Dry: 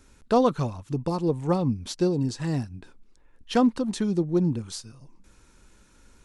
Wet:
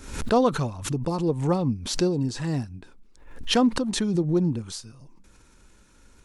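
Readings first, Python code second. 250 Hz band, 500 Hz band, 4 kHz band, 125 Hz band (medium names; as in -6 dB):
+0.5 dB, +0.5 dB, +7.5 dB, +1.0 dB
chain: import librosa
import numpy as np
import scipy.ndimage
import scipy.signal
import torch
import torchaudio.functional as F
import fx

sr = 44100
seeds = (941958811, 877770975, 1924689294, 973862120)

y = fx.pre_swell(x, sr, db_per_s=81.0)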